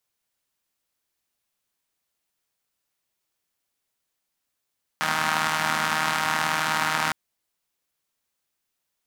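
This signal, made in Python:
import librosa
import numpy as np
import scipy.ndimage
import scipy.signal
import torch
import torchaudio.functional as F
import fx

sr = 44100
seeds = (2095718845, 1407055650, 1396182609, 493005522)

y = fx.engine_four(sr, seeds[0], length_s=2.11, rpm=4700, resonances_hz=(230.0, 910.0, 1300.0))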